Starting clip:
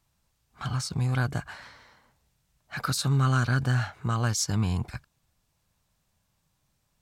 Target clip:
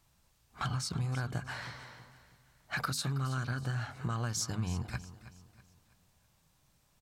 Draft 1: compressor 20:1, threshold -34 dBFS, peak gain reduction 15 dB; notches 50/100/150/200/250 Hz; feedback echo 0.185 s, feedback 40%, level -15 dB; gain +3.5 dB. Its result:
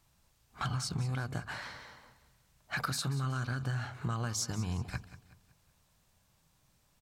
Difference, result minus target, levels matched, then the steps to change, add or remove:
echo 0.138 s early
change: feedback echo 0.323 s, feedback 40%, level -15 dB

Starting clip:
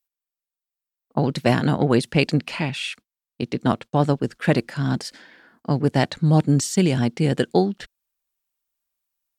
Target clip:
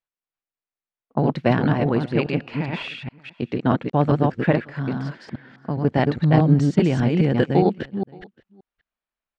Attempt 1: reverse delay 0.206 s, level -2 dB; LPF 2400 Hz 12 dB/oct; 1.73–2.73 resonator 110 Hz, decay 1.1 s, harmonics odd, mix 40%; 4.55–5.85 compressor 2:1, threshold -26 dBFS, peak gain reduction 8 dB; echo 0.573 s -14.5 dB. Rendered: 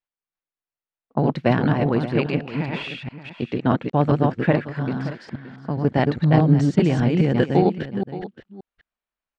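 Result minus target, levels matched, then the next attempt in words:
echo-to-direct +11 dB
reverse delay 0.206 s, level -2 dB; LPF 2400 Hz 12 dB/oct; 1.73–2.73 resonator 110 Hz, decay 1.1 s, harmonics odd, mix 40%; 4.55–5.85 compressor 2:1, threshold -26 dBFS, peak gain reduction 8 dB; echo 0.573 s -25.5 dB

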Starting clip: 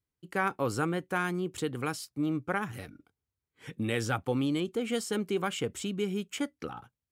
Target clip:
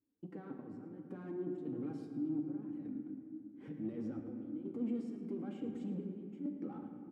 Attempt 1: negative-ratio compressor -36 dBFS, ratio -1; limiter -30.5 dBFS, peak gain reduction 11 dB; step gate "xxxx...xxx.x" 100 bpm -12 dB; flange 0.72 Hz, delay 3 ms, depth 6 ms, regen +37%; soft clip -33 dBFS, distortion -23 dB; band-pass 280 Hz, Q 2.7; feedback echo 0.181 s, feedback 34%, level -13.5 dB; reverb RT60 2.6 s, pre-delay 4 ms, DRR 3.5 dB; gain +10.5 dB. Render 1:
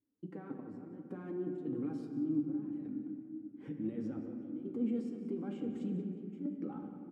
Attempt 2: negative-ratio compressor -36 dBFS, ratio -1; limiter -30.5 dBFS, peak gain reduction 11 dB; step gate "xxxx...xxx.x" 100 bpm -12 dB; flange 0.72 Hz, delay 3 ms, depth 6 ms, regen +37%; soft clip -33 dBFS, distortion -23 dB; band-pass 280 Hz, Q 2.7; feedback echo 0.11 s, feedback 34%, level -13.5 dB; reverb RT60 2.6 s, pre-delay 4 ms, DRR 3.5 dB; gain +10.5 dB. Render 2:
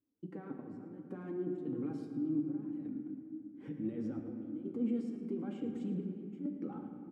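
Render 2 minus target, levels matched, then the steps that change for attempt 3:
soft clip: distortion -11 dB
change: soft clip -41.5 dBFS, distortion -12 dB

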